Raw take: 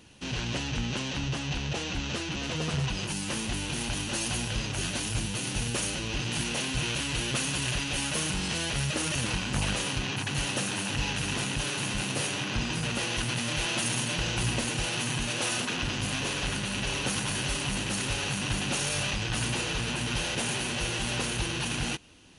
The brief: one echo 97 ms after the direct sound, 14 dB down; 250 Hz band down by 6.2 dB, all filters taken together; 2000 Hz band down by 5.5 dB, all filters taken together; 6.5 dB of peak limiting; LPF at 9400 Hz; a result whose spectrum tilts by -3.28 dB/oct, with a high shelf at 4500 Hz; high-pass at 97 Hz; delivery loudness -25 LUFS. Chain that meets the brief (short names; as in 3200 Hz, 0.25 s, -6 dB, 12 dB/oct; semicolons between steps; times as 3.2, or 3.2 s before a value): HPF 97 Hz; LPF 9400 Hz; bell 250 Hz -8.5 dB; bell 2000 Hz -6 dB; high shelf 4500 Hz -6.5 dB; limiter -26.5 dBFS; echo 97 ms -14 dB; gain +11 dB